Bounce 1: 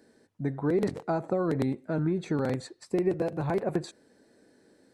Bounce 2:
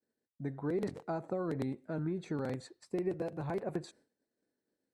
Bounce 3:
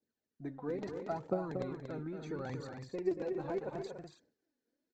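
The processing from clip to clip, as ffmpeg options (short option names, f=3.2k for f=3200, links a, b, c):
-af "agate=range=-33dB:threshold=-49dB:ratio=3:detection=peak,volume=-8dB"
-af "aresample=16000,aresample=44100,aphaser=in_gain=1:out_gain=1:delay=4.3:decay=0.61:speed=0.75:type=triangular,aecho=1:1:233.2|285.7:0.447|0.355,volume=-4.5dB"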